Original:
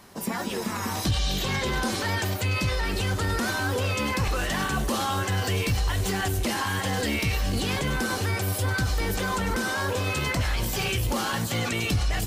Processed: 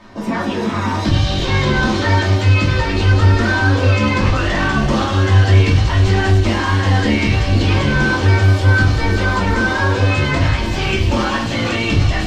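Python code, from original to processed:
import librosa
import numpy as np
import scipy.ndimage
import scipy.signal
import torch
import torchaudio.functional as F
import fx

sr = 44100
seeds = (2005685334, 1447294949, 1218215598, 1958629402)

p1 = fx.air_absorb(x, sr, metres=150.0)
p2 = p1 + fx.echo_wet_highpass(p1, sr, ms=192, feedback_pct=81, hz=3500.0, wet_db=-5, dry=0)
p3 = fx.room_shoebox(p2, sr, seeds[0], volume_m3=240.0, walls='furnished', distance_m=2.7)
y = p3 * 10.0 ** (5.0 / 20.0)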